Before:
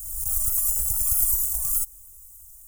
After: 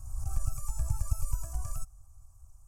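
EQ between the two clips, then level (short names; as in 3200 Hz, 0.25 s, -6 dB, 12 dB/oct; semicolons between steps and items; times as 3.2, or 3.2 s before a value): tape spacing loss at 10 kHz 26 dB; bell 150 Hz +8 dB 1.3 oct; +3.0 dB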